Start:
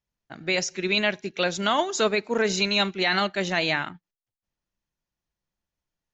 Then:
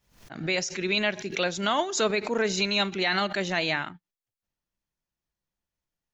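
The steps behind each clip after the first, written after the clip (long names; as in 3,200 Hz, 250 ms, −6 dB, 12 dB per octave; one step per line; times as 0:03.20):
background raised ahead of every attack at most 110 dB per second
level −2.5 dB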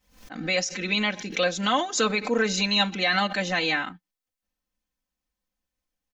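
comb filter 3.9 ms, depth 89%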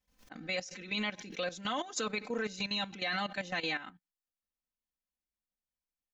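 output level in coarse steps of 13 dB
level −7.5 dB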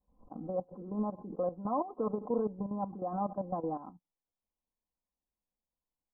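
Butterworth low-pass 1,100 Hz 72 dB per octave
level +4.5 dB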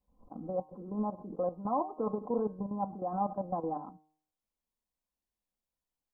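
hum removal 154.2 Hz, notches 39
dynamic equaliser 830 Hz, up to +4 dB, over −47 dBFS, Q 3.7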